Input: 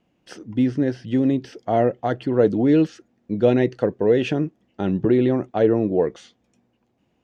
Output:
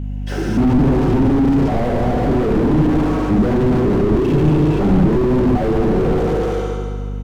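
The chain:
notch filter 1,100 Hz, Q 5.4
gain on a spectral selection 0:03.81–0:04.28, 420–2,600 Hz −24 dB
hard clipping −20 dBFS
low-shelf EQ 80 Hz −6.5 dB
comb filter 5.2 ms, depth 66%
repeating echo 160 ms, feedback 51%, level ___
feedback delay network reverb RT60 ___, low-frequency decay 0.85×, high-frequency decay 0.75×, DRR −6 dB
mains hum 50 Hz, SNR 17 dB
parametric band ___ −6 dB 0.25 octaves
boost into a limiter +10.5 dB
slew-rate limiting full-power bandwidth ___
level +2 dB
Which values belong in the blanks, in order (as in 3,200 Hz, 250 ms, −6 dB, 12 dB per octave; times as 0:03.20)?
−10.5 dB, 1.9 s, 4,500 Hz, 53 Hz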